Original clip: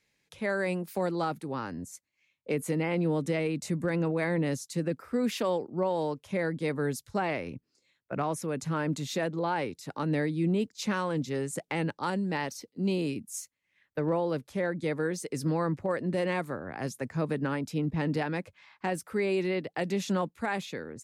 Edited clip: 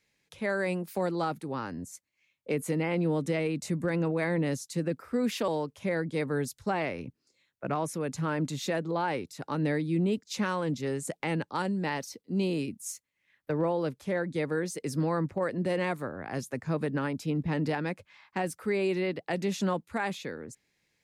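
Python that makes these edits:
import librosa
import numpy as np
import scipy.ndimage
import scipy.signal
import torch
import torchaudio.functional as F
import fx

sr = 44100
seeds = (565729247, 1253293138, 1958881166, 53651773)

y = fx.edit(x, sr, fx.cut(start_s=5.48, length_s=0.48), tone=tone)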